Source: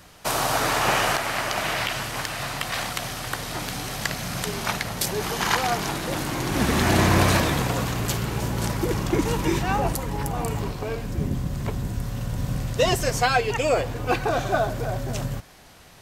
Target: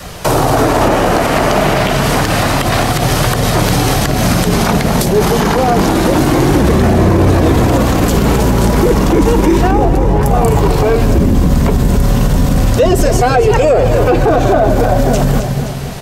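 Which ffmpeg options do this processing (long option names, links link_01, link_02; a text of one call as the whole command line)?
ffmpeg -i in.wav -filter_complex "[0:a]acrossover=split=590[link_01][link_02];[link_02]acompressor=threshold=-33dB:ratio=6[link_03];[link_01][link_03]amix=inputs=2:normalize=0,asettb=1/sr,asplit=3[link_04][link_05][link_06];[link_04]atrim=end=9.714[link_07];[link_05]atrim=start=9.71:end=10.23,asetpts=PTS-STARTPTS,afade=type=in:duration=0.004:curve=qsin,afade=type=out:start_time=0.516:duration=0.004:curve=qsin,lowpass=frequency=1300:poles=1[link_08];[link_06]atrim=start=10.226[link_09];[link_07][link_08]acrossfade=duration=0.004:curve1=hsin:curve2=qsin[link_10];[link_10][link_09]acrossfade=duration=0.004:curve1=qsin:curve2=hsin,aecho=1:1:260|520|780|1040|1300:0.251|0.131|0.0679|0.0353|0.0184,flanger=delay=1.5:depth=3.6:regen=-63:speed=0.29:shape=triangular,asplit=2[link_11][link_12];[link_12]adynamicsmooth=sensitivity=2.5:basefreq=930,volume=-2dB[link_13];[link_11][link_13]amix=inputs=2:normalize=0,adynamicequalizer=threshold=0.0158:dfrequency=120:dqfactor=1.2:tfrequency=120:tqfactor=1.2:attack=5:release=100:ratio=0.375:range=3:mode=cutabove:tftype=bell,aeval=exprs='0.316*(cos(1*acos(clip(val(0)/0.316,-1,1)))-cos(1*PI/2))+0.0112*(cos(2*acos(clip(val(0)/0.316,-1,1)))-cos(2*PI/2))+0.00891*(cos(5*acos(clip(val(0)/0.316,-1,1)))-cos(5*PI/2))+0.00282*(cos(8*acos(clip(val(0)/0.316,-1,1)))-cos(8*PI/2))':channel_layout=same,alimiter=level_in=24dB:limit=-1dB:release=50:level=0:latency=1,volume=-1.5dB" -ar 48000 -c:a libmp3lame -b:a 224k out.mp3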